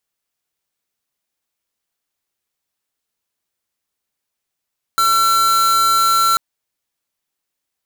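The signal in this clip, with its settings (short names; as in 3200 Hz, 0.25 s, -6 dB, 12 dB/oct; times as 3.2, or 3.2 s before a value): tone square 1350 Hz -14 dBFS 1.39 s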